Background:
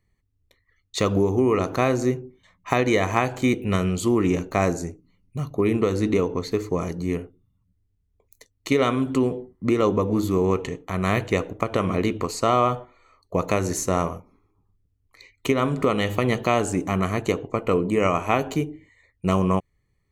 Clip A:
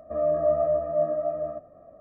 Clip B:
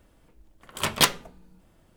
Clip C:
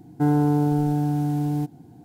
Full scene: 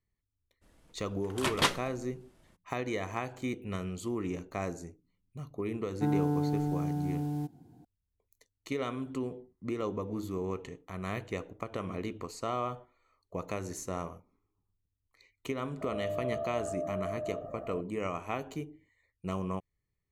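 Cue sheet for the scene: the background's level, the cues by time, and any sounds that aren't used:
background -14 dB
0.61 add B -3.5 dB, fades 0.02 s + CVSD 64 kbps
5.81 add C -9.5 dB
15.81 add A -15 dB + fast leveller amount 70%

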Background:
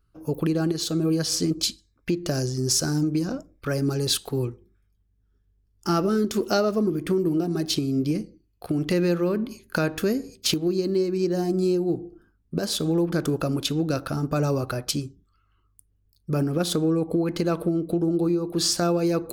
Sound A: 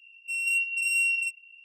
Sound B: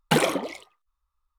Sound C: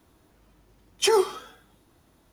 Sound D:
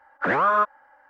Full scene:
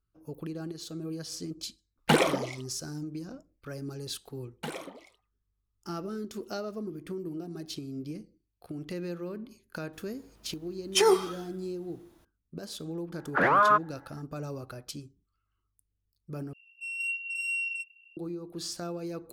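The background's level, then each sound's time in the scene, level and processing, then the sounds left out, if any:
background -14 dB
1.98 add B -1.5 dB + high shelf 6600 Hz -5 dB
4.52 add B -17 dB
9.93 add C -1.5 dB
13.13 add D -1.5 dB
16.53 replace with A -4.5 dB + LPF 3500 Hz 6 dB/oct

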